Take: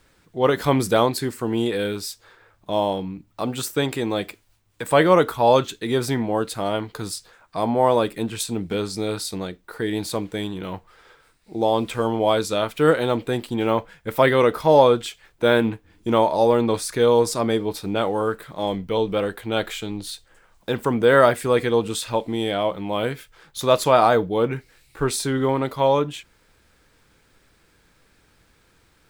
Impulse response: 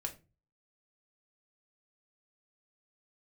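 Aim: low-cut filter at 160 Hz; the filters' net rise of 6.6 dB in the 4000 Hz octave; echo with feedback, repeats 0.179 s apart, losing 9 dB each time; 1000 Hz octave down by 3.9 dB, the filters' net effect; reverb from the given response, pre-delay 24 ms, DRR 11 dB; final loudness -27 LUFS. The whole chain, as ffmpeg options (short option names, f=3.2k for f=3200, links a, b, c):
-filter_complex "[0:a]highpass=160,equalizer=f=1k:t=o:g=-5.5,equalizer=f=4k:t=o:g=8.5,aecho=1:1:179|358|537|716:0.355|0.124|0.0435|0.0152,asplit=2[a][b];[1:a]atrim=start_sample=2205,adelay=24[c];[b][c]afir=irnorm=-1:irlink=0,volume=-10.5dB[d];[a][d]amix=inputs=2:normalize=0,volume=-5.5dB"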